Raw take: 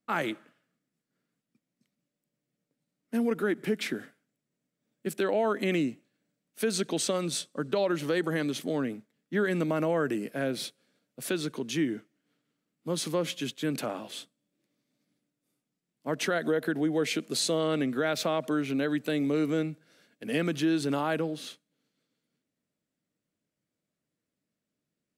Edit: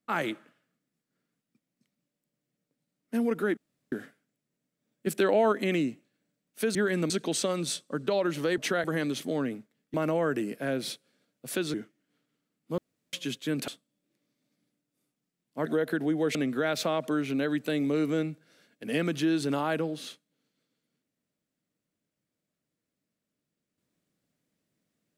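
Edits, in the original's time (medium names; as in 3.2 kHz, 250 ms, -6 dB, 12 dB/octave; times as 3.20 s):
3.57–3.92 s: room tone
5.07–5.52 s: gain +3.5 dB
9.33–9.68 s: move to 6.75 s
11.48–11.90 s: delete
12.94–13.29 s: room tone
13.84–14.17 s: delete
16.15–16.41 s: move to 8.23 s
17.10–17.75 s: delete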